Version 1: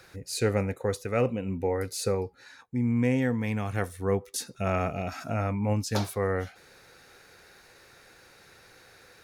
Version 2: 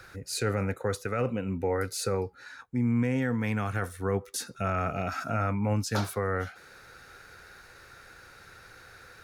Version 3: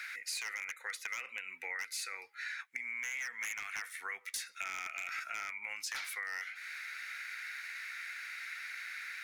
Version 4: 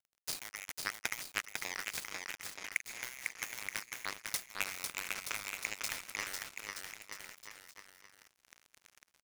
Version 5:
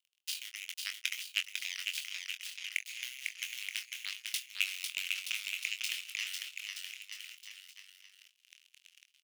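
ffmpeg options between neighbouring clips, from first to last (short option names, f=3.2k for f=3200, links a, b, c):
-filter_complex "[0:a]equalizer=f=1.4k:t=o:w=0.5:g=9,acrossover=split=110[a][b];[a]acompressor=mode=upward:threshold=-52dB:ratio=2.5[c];[b]alimiter=limit=-19.5dB:level=0:latency=1:release=27[d];[c][d]amix=inputs=2:normalize=0"
-af "highpass=f=2.1k:t=q:w=6.7,aeval=exprs='0.0668*(abs(mod(val(0)/0.0668+3,4)-2)-1)':c=same,acompressor=threshold=-41dB:ratio=6,volume=3.5dB"
-filter_complex "[0:a]acrusher=bits=4:mix=0:aa=0.5,asplit=2[a][b];[b]aecho=0:1:500|925|1286|1593|1854:0.631|0.398|0.251|0.158|0.1[c];[a][c]amix=inputs=2:normalize=0,volume=7dB"
-filter_complex "[0:a]highpass=f=2.9k:t=q:w=5,asplit=2[a][b];[b]adelay=23,volume=-8dB[c];[a][c]amix=inputs=2:normalize=0,volume=-2.5dB"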